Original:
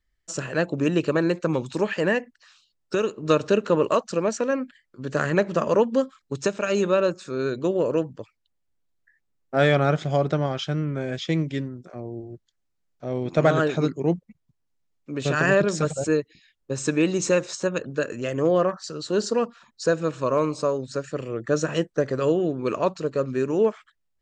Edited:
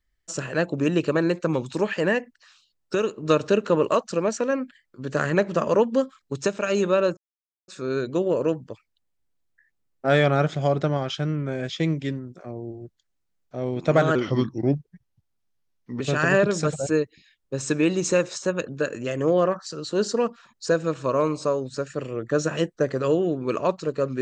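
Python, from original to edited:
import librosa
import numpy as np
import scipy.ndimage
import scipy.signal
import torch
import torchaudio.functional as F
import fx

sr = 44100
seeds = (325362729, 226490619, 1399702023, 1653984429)

y = fx.edit(x, sr, fx.insert_silence(at_s=7.17, length_s=0.51),
    fx.speed_span(start_s=13.64, length_s=1.54, speed=0.83), tone=tone)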